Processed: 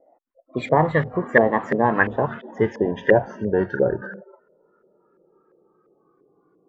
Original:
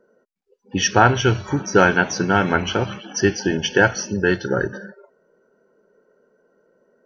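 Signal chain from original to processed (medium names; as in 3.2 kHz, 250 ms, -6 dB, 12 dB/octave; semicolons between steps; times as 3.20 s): gliding tape speed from 136% -> 75%; LFO low-pass saw up 2.9 Hz 490–1900 Hz; trim -3 dB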